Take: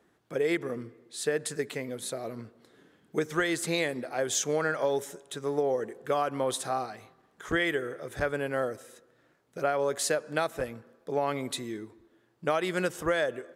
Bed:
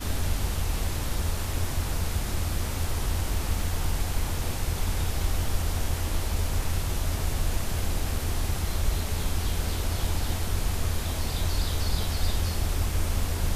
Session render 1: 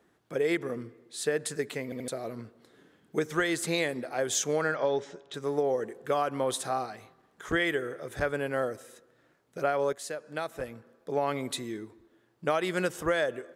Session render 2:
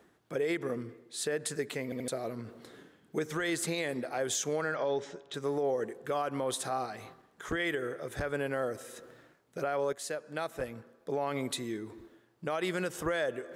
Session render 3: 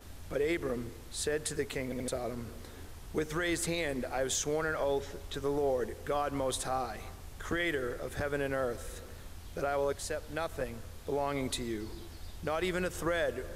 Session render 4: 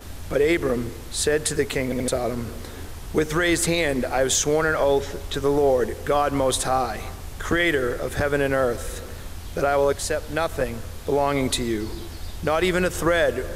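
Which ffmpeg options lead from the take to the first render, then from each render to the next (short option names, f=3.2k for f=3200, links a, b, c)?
-filter_complex "[0:a]asettb=1/sr,asplit=3[a][b][c];[a]atrim=end=4.744[d];[b]atrim=start=4.74:end=5.34,asetpts=PTS-STARTPTS,afade=t=in:d=0.004:c=qsin,afade=t=out:st=0.596:d=0.004:c=qsin,lowpass=f=5.3k:w=0.5412,lowpass=f=5.3k:w=1.3066[e];[c]atrim=start=5.336[f];[d][e]acrossfade=d=0.004:c1=hsin:c2=qsin[g];[g][f]acrossfade=d=0.004:c1=qsin:c2=hsin,asplit=5[h][i][j][k][l];[h]atrim=end=1.922[m];[i]atrim=start=1.838:end=1.922[n];[j]atrim=start=1.838:end=1.922[o];[k]atrim=start=2.078:end=9.93,asetpts=PTS-STARTPTS,afade=t=out:st=7.848:d=0.004:c=hsin:silence=0.237137[p];[l]atrim=start=9.93,asetpts=PTS-STARTPTS,afade=t=in:d=1.24:silence=0.237137[q];[m][n]acrossfade=d=0.004:c1=hsin:c2=hsin[r];[r][o]acrossfade=d=0.004:c1=hsin:c2=hsin[s];[p][q]concat=n=2:v=0:a=1[t];[s][t]acrossfade=d=0.004:c1=hsin:c2=hsin"
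-af "alimiter=limit=-22.5dB:level=0:latency=1:release=78,areverse,acompressor=mode=upward:threshold=-41dB:ratio=2.5,areverse"
-filter_complex "[1:a]volume=-20dB[a];[0:a][a]amix=inputs=2:normalize=0"
-af "volume=11.5dB"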